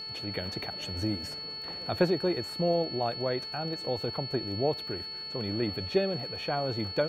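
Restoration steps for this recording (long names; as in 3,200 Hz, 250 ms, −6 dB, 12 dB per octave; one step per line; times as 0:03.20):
click removal
hum removal 438.2 Hz, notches 7
notch filter 4,400 Hz, Q 30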